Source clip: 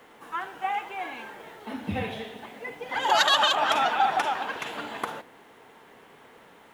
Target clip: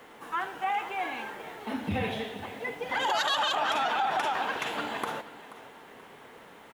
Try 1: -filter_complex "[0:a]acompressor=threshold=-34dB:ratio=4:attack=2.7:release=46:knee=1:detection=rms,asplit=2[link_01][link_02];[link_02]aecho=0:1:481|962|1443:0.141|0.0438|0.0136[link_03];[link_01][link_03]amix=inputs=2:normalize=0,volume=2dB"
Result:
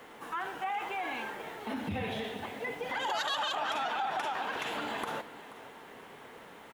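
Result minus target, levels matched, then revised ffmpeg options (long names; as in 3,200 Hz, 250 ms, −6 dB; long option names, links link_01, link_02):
downward compressor: peak gain reduction +5 dB
-filter_complex "[0:a]acompressor=threshold=-27dB:ratio=4:attack=2.7:release=46:knee=1:detection=rms,asplit=2[link_01][link_02];[link_02]aecho=0:1:481|962|1443:0.141|0.0438|0.0136[link_03];[link_01][link_03]amix=inputs=2:normalize=0,volume=2dB"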